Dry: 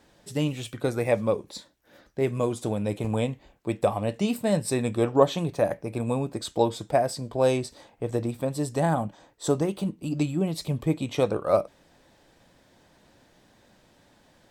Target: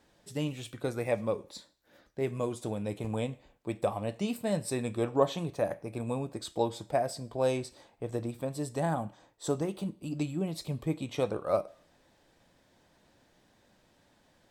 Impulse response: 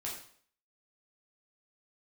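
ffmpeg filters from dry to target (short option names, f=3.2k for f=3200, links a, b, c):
-filter_complex "[0:a]asplit=2[a][b];[b]equalizer=f=180:t=o:w=1.8:g=-11.5[c];[1:a]atrim=start_sample=2205[d];[c][d]afir=irnorm=-1:irlink=0,volume=-14.5dB[e];[a][e]amix=inputs=2:normalize=0,volume=-7dB"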